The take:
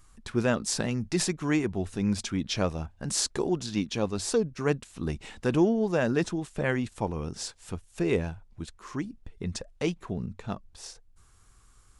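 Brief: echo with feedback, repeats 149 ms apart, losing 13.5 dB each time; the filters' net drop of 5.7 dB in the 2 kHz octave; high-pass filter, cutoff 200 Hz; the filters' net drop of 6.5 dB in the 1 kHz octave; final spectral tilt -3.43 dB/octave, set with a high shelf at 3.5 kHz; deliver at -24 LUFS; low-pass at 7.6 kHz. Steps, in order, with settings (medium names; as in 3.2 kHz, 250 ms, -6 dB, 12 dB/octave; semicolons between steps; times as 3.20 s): high-pass 200 Hz; low-pass 7.6 kHz; peaking EQ 1 kHz -8 dB; peaking EQ 2 kHz -7.5 dB; treble shelf 3.5 kHz +8.5 dB; feedback delay 149 ms, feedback 21%, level -13.5 dB; trim +6.5 dB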